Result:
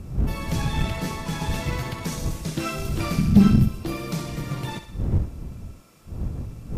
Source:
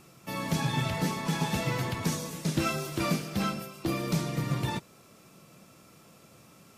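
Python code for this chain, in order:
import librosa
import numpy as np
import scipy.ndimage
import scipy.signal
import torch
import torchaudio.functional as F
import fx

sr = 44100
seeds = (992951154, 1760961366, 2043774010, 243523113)

y = fx.dmg_wind(x, sr, seeds[0], corner_hz=110.0, level_db=-29.0)
y = fx.low_shelf_res(y, sr, hz=320.0, db=11.5, q=3.0, at=(3.18, 3.68))
y = fx.echo_thinned(y, sr, ms=64, feedback_pct=58, hz=420.0, wet_db=-9.5)
y = fx.cheby_harmonics(y, sr, harmonics=(4,), levels_db=(-22,), full_scale_db=-3.5)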